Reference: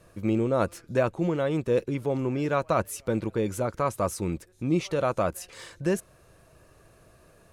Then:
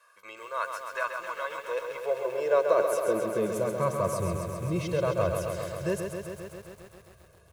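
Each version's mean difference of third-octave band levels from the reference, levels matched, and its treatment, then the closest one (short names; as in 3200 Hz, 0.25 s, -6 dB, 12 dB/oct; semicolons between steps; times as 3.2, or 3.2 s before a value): 10.5 dB: high-pass sweep 1200 Hz -> 69 Hz, 1.36–4.85; comb 1.9 ms, depth 97%; lo-fi delay 0.133 s, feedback 80%, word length 8-bit, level -6 dB; gain -6.5 dB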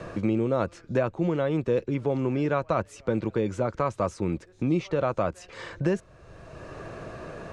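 5.0 dB: LPF 7800 Hz 24 dB/oct; high shelf 5500 Hz -10.5 dB; three-band squash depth 70%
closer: second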